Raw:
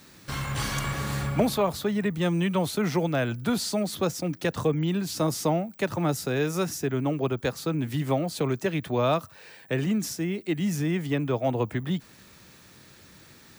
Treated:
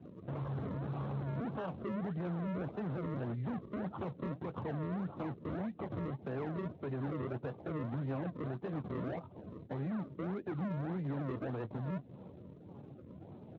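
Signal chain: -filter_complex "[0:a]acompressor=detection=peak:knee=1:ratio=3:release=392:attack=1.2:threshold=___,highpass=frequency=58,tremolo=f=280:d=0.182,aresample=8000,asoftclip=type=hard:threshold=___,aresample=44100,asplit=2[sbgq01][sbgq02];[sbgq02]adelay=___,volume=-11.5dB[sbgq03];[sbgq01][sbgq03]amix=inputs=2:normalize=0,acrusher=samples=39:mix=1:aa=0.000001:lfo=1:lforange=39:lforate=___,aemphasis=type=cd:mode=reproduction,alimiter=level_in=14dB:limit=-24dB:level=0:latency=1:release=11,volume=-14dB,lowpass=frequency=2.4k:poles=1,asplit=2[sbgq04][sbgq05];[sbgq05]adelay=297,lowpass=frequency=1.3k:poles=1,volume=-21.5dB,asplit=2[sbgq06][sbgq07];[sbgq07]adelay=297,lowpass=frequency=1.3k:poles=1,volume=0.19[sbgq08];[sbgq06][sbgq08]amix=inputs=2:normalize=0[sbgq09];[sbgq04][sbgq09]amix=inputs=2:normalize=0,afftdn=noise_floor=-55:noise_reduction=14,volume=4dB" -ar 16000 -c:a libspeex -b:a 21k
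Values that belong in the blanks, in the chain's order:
-33dB, -37.5dB, 22, 1.7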